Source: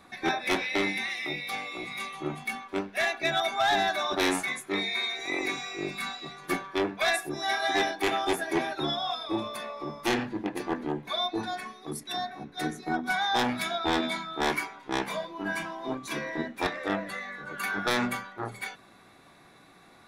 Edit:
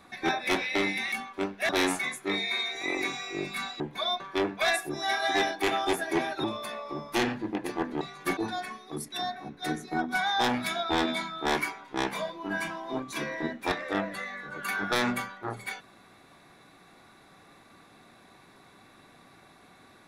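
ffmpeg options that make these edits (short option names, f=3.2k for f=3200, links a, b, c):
-filter_complex "[0:a]asplit=8[a][b][c][d][e][f][g][h];[a]atrim=end=1.122[i];[b]atrim=start=2.468:end=3.042[j];[c]atrim=start=4.128:end=6.242[k];[d]atrim=start=10.918:end=11.322[l];[e]atrim=start=6.598:end=8.842[m];[f]atrim=start=9.348:end=10.922[n];[g]atrim=start=6.238:end=6.602[o];[h]atrim=start=11.318[p];[i][j]acrossfade=d=0.004:c1=hsin:c2=hsin[q];[q][k]acrossfade=d=0.004:c1=hsin:c2=hsin[r];[r][l]acrossfade=d=0.004:c1=hsin:c2=hsin[s];[s][m]acrossfade=d=0.004:c1=hsin:c2=hsin[t];[t][n]acrossfade=d=0.004:c1=hsin:c2=hsin[u];[u][o]acrossfade=d=0.004:c1=hsin:c2=hsin[v];[v][p]acrossfade=d=0.004:c1=hsin:c2=hsin"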